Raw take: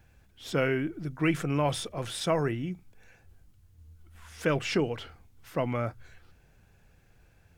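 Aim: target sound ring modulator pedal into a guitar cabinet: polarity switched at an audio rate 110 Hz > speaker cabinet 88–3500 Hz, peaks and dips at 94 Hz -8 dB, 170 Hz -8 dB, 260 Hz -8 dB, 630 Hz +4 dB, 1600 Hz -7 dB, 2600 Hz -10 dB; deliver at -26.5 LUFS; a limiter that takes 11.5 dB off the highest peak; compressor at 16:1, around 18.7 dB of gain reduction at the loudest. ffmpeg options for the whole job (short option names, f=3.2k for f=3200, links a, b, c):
-af "acompressor=threshold=-40dB:ratio=16,alimiter=level_in=15.5dB:limit=-24dB:level=0:latency=1,volume=-15.5dB,aeval=exprs='val(0)*sgn(sin(2*PI*110*n/s))':c=same,highpass=88,equalizer=f=94:t=q:w=4:g=-8,equalizer=f=170:t=q:w=4:g=-8,equalizer=f=260:t=q:w=4:g=-8,equalizer=f=630:t=q:w=4:g=4,equalizer=f=1.6k:t=q:w=4:g=-7,equalizer=f=2.6k:t=q:w=4:g=-10,lowpass=f=3.5k:w=0.5412,lowpass=f=3.5k:w=1.3066,volume=27.5dB"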